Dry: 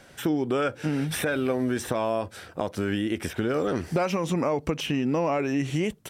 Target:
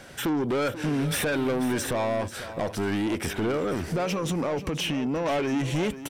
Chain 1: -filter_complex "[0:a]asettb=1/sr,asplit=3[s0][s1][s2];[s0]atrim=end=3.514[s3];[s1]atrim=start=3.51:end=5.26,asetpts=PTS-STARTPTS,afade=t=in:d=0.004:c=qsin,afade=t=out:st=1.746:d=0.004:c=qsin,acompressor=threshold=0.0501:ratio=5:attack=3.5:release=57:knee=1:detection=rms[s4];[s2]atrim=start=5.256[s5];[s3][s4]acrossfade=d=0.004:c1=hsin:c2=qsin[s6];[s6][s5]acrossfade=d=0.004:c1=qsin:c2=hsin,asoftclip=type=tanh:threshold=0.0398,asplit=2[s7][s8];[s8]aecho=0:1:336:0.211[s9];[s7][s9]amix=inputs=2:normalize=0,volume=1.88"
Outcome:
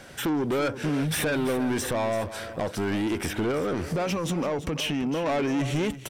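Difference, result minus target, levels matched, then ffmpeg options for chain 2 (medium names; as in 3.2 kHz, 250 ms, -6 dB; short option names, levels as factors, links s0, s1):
echo 152 ms early
-filter_complex "[0:a]asettb=1/sr,asplit=3[s0][s1][s2];[s0]atrim=end=3.514[s3];[s1]atrim=start=3.51:end=5.26,asetpts=PTS-STARTPTS,afade=t=in:d=0.004:c=qsin,afade=t=out:st=1.746:d=0.004:c=qsin,acompressor=threshold=0.0501:ratio=5:attack=3.5:release=57:knee=1:detection=rms[s4];[s2]atrim=start=5.256[s5];[s3][s4]acrossfade=d=0.004:c1=hsin:c2=qsin[s6];[s6][s5]acrossfade=d=0.004:c1=qsin:c2=hsin,asoftclip=type=tanh:threshold=0.0398,asplit=2[s7][s8];[s8]aecho=0:1:488:0.211[s9];[s7][s9]amix=inputs=2:normalize=0,volume=1.88"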